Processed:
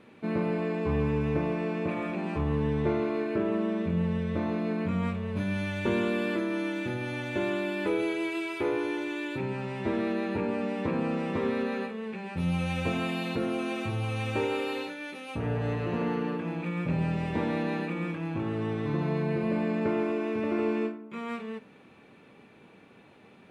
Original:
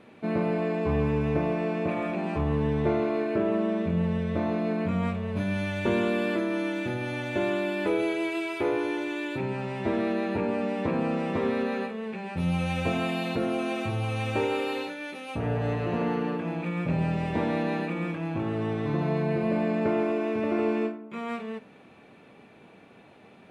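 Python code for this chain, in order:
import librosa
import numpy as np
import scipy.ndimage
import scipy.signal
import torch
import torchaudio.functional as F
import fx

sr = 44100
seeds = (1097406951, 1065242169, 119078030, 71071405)

y = fx.peak_eq(x, sr, hz=680.0, db=-5.5, octaves=0.38)
y = y * librosa.db_to_amplitude(-1.5)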